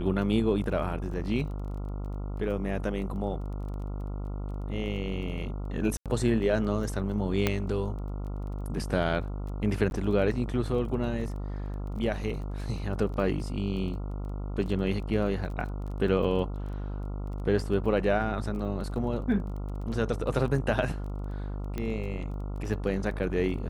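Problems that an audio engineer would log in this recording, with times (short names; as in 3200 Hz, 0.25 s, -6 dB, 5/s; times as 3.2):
buzz 50 Hz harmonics 28 -34 dBFS
crackle 16/s -39 dBFS
5.97–6.06 gap 87 ms
7.47 pop -10 dBFS
9.9–9.91 gap
21.78 pop -20 dBFS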